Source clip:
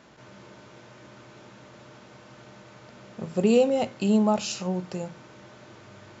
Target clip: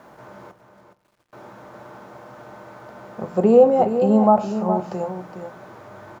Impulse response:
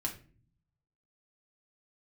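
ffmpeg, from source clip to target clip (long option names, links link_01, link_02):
-filter_complex "[0:a]asettb=1/sr,asplit=3[link_01][link_02][link_03];[link_01]atrim=end=0.514[link_04];[link_02]atrim=start=0.51:end=1.33,asetpts=PTS-STARTPTS,afade=type=in:duration=0.004:curve=qsin,afade=type=out:start_time=0.816:duration=0.004:curve=qsin,agate=range=-29dB:threshold=-44dB:ratio=16:detection=peak[link_05];[link_03]atrim=start=1.326[link_06];[link_04][link_05]acrossfade=duration=0.004:curve1=hsin:curve2=qsin[link_07];[link_07][link_06]acrossfade=duration=0.004:curve1=qsin:curve2=hsin,firequalizer=gain_entry='entry(110,0);entry(780,10);entry(2700,-6)':delay=0.05:min_phase=1,acrossover=split=390|1600[link_08][link_09][link_10];[link_10]acompressor=threshold=-49dB:ratio=6[link_11];[link_08][link_09][link_11]amix=inputs=3:normalize=0,acrusher=bits=10:mix=0:aa=0.000001,aecho=1:1:416:0.355,asplit=2[link_12][link_13];[1:a]atrim=start_sample=2205,asetrate=24255,aresample=44100[link_14];[link_13][link_14]afir=irnorm=-1:irlink=0,volume=-15dB[link_15];[link_12][link_15]amix=inputs=2:normalize=0"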